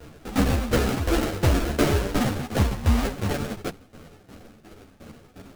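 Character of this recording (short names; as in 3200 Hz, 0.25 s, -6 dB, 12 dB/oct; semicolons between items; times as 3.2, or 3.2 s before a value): tremolo saw down 2.8 Hz, depth 85%; aliases and images of a low sample rate 1000 Hz, jitter 20%; a shimmering, thickened sound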